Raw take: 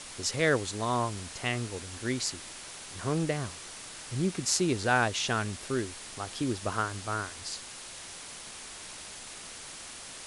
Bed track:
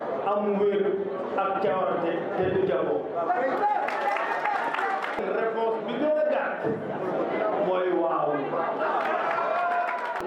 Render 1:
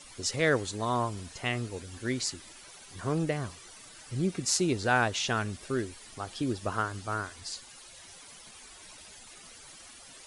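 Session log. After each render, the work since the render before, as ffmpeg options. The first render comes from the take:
ffmpeg -i in.wav -af "afftdn=noise_reduction=12:noise_floor=-45" out.wav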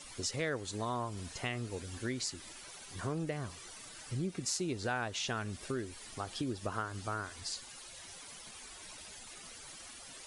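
ffmpeg -i in.wav -af "acompressor=threshold=-35dB:ratio=3" out.wav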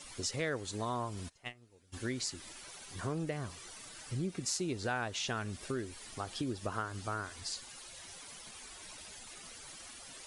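ffmpeg -i in.wav -filter_complex "[0:a]asplit=3[link_01][link_02][link_03];[link_01]afade=type=out:start_time=1.28:duration=0.02[link_04];[link_02]agate=range=-23dB:threshold=-35dB:ratio=16:release=100:detection=peak,afade=type=in:start_time=1.28:duration=0.02,afade=type=out:start_time=1.92:duration=0.02[link_05];[link_03]afade=type=in:start_time=1.92:duration=0.02[link_06];[link_04][link_05][link_06]amix=inputs=3:normalize=0" out.wav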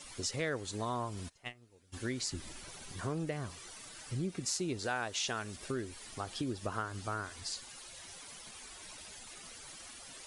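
ffmpeg -i in.wav -filter_complex "[0:a]asettb=1/sr,asplit=3[link_01][link_02][link_03];[link_01]atrim=end=2.314[link_04];[link_02]atrim=start=2.31:end=2.92,asetpts=PTS-STARTPTS,afade=type=in:duration=0.004:curve=qsin,afade=type=out:start_time=0.606:duration=0.004:curve=qsin,lowshelf=frequency=300:gain=11[link_05];[link_03]atrim=start=2.916[link_06];[link_04][link_05]acrossfade=duration=0.004:curve1=hsin:curve2=qsin[link_07];[link_07][link_06]acrossfade=duration=0.004:curve1=qsin:curve2=hsin,asettb=1/sr,asplit=3[link_08][link_09][link_10];[link_08]atrim=end=4.794[link_11];[link_09]atrim=start=4.79:end=5.56,asetpts=PTS-STARTPTS,afade=type=in:duration=0.004:curve=qsin,afade=type=out:start_time=0.766:duration=0.004:curve=qsin,bass=frequency=250:gain=-6,treble=frequency=4000:gain=4[link_12];[link_10]atrim=start=5.556[link_13];[link_11][link_12]acrossfade=duration=0.004:curve1=hsin:curve2=qsin[link_14];[link_14][link_13]acrossfade=duration=0.004:curve1=qsin:curve2=hsin" out.wav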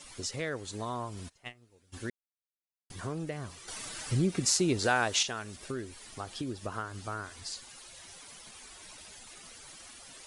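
ffmpeg -i in.wav -filter_complex "[0:a]asplit=5[link_01][link_02][link_03][link_04][link_05];[link_01]atrim=end=2.1,asetpts=PTS-STARTPTS,afade=type=out:start_time=2.096:duration=0.004:curve=hsin[link_06];[link_02]atrim=start=2.1:end=2.9,asetpts=PTS-STARTPTS,volume=0[link_07];[link_03]atrim=start=2.9:end=3.682,asetpts=PTS-STARTPTS,afade=type=in:duration=0.004:curve=hsin[link_08];[link_04]atrim=start=3.678:end=5.232,asetpts=PTS-STARTPTS,volume=8.5dB[link_09];[link_05]atrim=start=5.228[link_10];[link_06][link_07][link_08]concat=n=3:v=0:a=1[link_11];[link_11][link_09]acrossfade=duration=0.004:curve1=hsin:curve2=hsin[link_12];[link_12][link_10]acrossfade=duration=0.004:curve1=hsin:curve2=hsin" out.wav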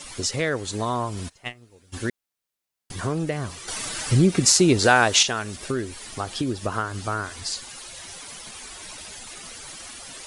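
ffmpeg -i in.wav -af "volume=10.5dB,alimiter=limit=-1dB:level=0:latency=1" out.wav

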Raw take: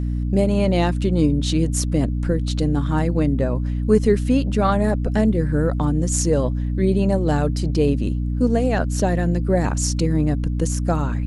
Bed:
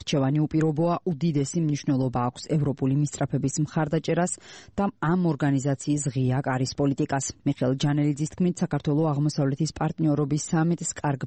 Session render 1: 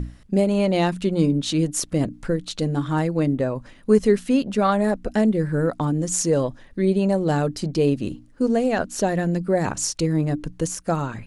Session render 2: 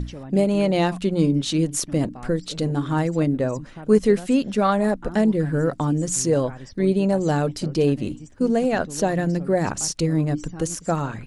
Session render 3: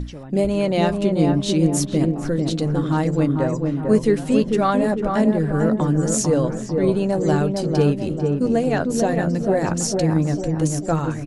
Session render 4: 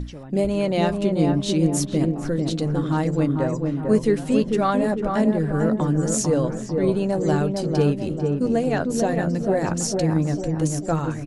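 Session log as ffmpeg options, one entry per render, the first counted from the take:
ffmpeg -i in.wav -af "bandreject=frequency=60:width_type=h:width=6,bandreject=frequency=120:width_type=h:width=6,bandreject=frequency=180:width_type=h:width=6,bandreject=frequency=240:width_type=h:width=6,bandreject=frequency=300:width_type=h:width=6" out.wav
ffmpeg -i in.wav -i bed.wav -filter_complex "[1:a]volume=-14dB[link_01];[0:a][link_01]amix=inputs=2:normalize=0" out.wav
ffmpeg -i in.wav -filter_complex "[0:a]asplit=2[link_01][link_02];[link_02]adelay=13,volume=-13.5dB[link_03];[link_01][link_03]amix=inputs=2:normalize=0,asplit=2[link_04][link_05];[link_05]adelay=447,lowpass=frequency=1100:poles=1,volume=-3dB,asplit=2[link_06][link_07];[link_07]adelay=447,lowpass=frequency=1100:poles=1,volume=0.52,asplit=2[link_08][link_09];[link_09]adelay=447,lowpass=frequency=1100:poles=1,volume=0.52,asplit=2[link_10][link_11];[link_11]adelay=447,lowpass=frequency=1100:poles=1,volume=0.52,asplit=2[link_12][link_13];[link_13]adelay=447,lowpass=frequency=1100:poles=1,volume=0.52,asplit=2[link_14][link_15];[link_15]adelay=447,lowpass=frequency=1100:poles=1,volume=0.52,asplit=2[link_16][link_17];[link_17]adelay=447,lowpass=frequency=1100:poles=1,volume=0.52[link_18];[link_04][link_06][link_08][link_10][link_12][link_14][link_16][link_18]amix=inputs=8:normalize=0" out.wav
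ffmpeg -i in.wav -af "volume=-2dB" out.wav

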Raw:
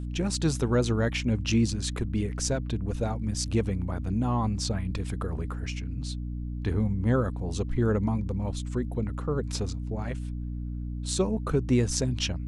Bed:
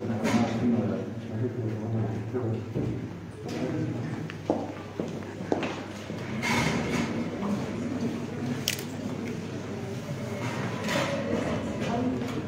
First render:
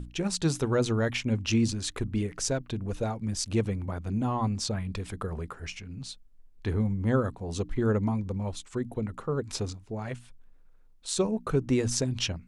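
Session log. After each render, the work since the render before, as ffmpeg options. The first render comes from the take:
ffmpeg -i in.wav -af "bandreject=frequency=60:width_type=h:width=6,bandreject=frequency=120:width_type=h:width=6,bandreject=frequency=180:width_type=h:width=6,bandreject=frequency=240:width_type=h:width=6,bandreject=frequency=300:width_type=h:width=6" out.wav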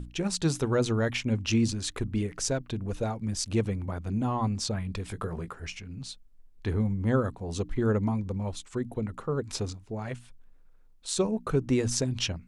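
ffmpeg -i in.wav -filter_complex "[0:a]asettb=1/sr,asplit=3[link_01][link_02][link_03];[link_01]atrim=end=5.084[link_04];[link_02]atrim=start=5.08:end=5.52,asetpts=PTS-STARTPTS,afade=type=in:duration=0.004:curve=qsin,afade=type=out:start_time=0.436:duration=0.004:curve=qsin,asplit=2[link_05][link_06];[link_06]adelay=18,volume=-7.5dB[link_07];[link_05][link_07]amix=inputs=2:normalize=0,atrim=end_sample=19404[link_08];[link_03]atrim=start=5.516[link_09];[link_04][link_08]acrossfade=duration=0.004:curve1=hsin:curve2=qsin[link_10];[link_10][link_09]acrossfade=duration=0.004:curve1=qsin:curve2=hsin" out.wav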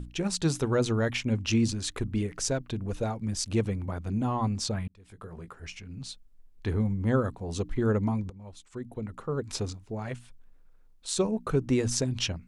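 ffmpeg -i in.wav -filter_complex "[0:a]asplit=3[link_01][link_02][link_03];[link_01]atrim=end=4.88,asetpts=PTS-STARTPTS,afade=type=out:start_time=4.876:duration=0.004:curve=hsin[link_04];[link_02]atrim=start=4.88:end=8.3,asetpts=PTS-STARTPTS,afade=type=in:duration=1.18,afade=type=out:start_time=3.416:duration=0.004:curve=hsin:silence=0.11885[link_05];[link_03]atrim=start=8.3,asetpts=PTS-STARTPTS,afade=type=in:duration=1.24:silence=0.11885[link_06];[link_04][link_05][link_06]concat=n=3:v=0:a=1" out.wav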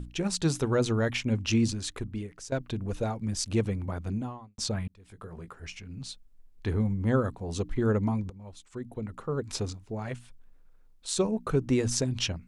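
ffmpeg -i in.wav -filter_complex "[0:a]asplit=3[link_01][link_02][link_03];[link_01]atrim=end=2.52,asetpts=PTS-STARTPTS,afade=type=out:start_time=1.64:duration=0.88:silence=0.158489[link_04];[link_02]atrim=start=2.52:end=4.58,asetpts=PTS-STARTPTS,afade=type=in:duration=0.004:curve=hsin:silence=0.158489,afade=type=out:start_time=1.58:duration=0.48:curve=qua[link_05];[link_03]atrim=start=4.58,asetpts=PTS-STARTPTS,afade=type=in:duration=0.004:curve=hsin[link_06];[link_04][link_05][link_06]concat=n=3:v=0:a=1" out.wav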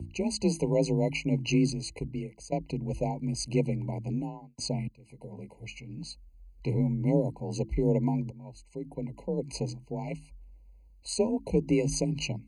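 ffmpeg -i in.wav -af "afreqshift=32,afftfilt=real='re*eq(mod(floor(b*sr/1024/1000),2),0)':imag='im*eq(mod(floor(b*sr/1024/1000),2),0)':win_size=1024:overlap=0.75" out.wav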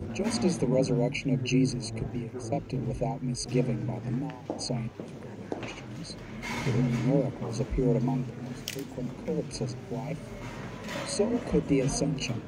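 ffmpeg -i in.wav -i bed.wav -filter_complex "[1:a]volume=-8dB[link_01];[0:a][link_01]amix=inputs=2:normalize=0" out.wav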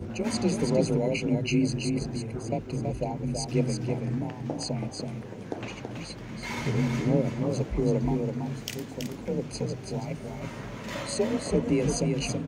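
ffmpeg -i in.wav -af "aecho=1:1:328:0.562" out.wav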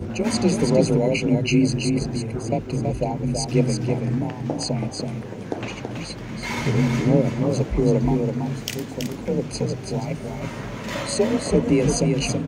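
ffmpeg -i in.wav -af "volume=6.5dB" out.wav

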